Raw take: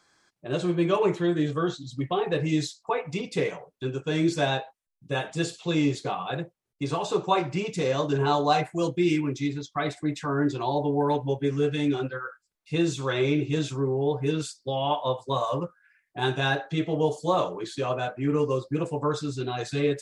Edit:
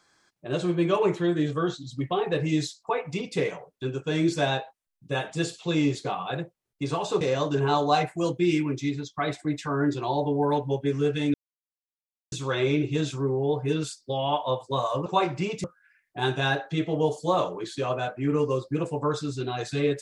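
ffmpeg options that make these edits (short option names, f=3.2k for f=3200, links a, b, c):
-filter_complex "[0:a]asplit=6[a][b][c][d][e][f];[a]atrim=end=7.212[g];[b]atrim=start=7.788:end=11.92,asetpts=PTS-STARTPTS,afade=t=out:st=4.128:d=0.004:c=hsin[h];[c]atrim=start=11.92:end=12.9,asetpts=PTS-STARTPTS,volume=0[i];[d]atrim=start=12.9:end=15.642,asetpts=PTS-STARTPTS,afade=t=in:d=0.004:c=hsin[j];[e]atrim=start=7.208:end=7.792[k];[f]atrim=start=15.638[l];[h][i][j]concat=n=3:v=0:a=1[m];[g][m]acrossfade=d=0.004:c1=hsin:c2=hsin[n];[n][k]acrossfade=d=0.004:c1=hsin:c2=hsin[o];[o][l]acrossfade=d=0.004:c1=hsin:c2=hsin"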